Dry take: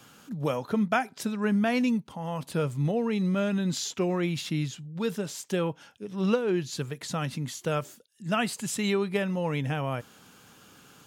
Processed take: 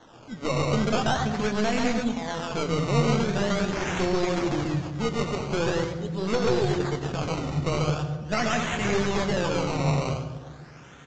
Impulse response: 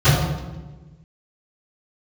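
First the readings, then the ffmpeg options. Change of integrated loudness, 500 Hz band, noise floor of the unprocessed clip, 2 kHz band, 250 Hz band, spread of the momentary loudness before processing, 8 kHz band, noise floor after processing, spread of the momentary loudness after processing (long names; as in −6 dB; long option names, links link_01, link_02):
+3.0 dB, +3.5 dB, −58 dBFS, +4.0 dB, +1.0 dB, 9 LU, +0.5 dB, −47 dBFS, 7 LU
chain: -filter_complex "[0:a]equalizer=frequency=130:width_type=o:width=0.56:gain=-14,aecho=1:1:137|227.4:0.891|0.398,acrossover=split=180[link_01][link_02];[link_01]acompressor=threshold=-46dB:ratio=6[link_03];[link_03][link_02]amix=inputs=2:normalize=0,acrusher=samples=18:mix=1:aa=0.000001:lfo=1:lforange=18:lforate=0.43,aeval=exprs='0.282*(cos(1*acos(clip(val(0)/0.282,-1,1)))-cos(1*PI/2))+0.112*(cos(5*acos(clip(val(0)/0.282,-1,1)))-cos(5*PI/2))+0.0891*(cos(6*acos(clip(val(0)/0.282,-1,1)))-cos(6*PI/2))':channel_layout=same,asplit=2[link_04][link_05];[1:a]atrim=start_sample=2205,highshelf=frequency=5700:gain=12,adelay=83[link_06];[link_05][link_06]afir=irnorm=-1:irlink=0,volume=-34.5dB[link_07];[link_04][link_07]amix=inputs=2:normalize=0,flanger=delay=8.7:depth=5.7:regen=-60:speed=0.43:shape=sinusoidal,aresample=16000,aresample=44100,volume=-3dB"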